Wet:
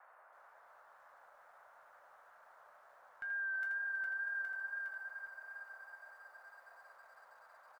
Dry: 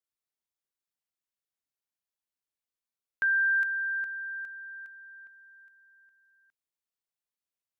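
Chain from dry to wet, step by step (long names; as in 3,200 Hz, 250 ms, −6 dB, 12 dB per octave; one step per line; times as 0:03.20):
reversed playback
downward compressor 6 to 1, threshold −40 dBFS, peak gain reduction 14.5 dB
reversed playback
tuned comb filter 720 Hz, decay 0.18 s, harmonics all, mix 90%
on a send: single-tap delay 81 ms −7 dB
on the sum: noise in a band 560–1,600 Hz −78 dBFS
tape wow and flutter 27 cents
feedback echo at a low word length 323 ms, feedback 80%, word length 14 bits, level −13 dB
level +15.5 dB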